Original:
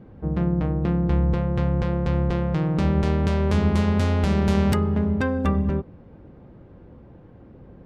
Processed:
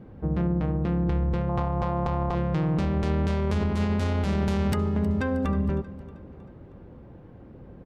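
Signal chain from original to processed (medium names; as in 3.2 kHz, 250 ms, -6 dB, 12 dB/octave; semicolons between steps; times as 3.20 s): 1.49–2.35 s: high-order bell 870 Hz +11.5 dB 1.2 oct; peak limiter -18 dBFS, peak gain reduction 9.5 dB; feedback delay 315 ms, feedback 51%, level -18 dB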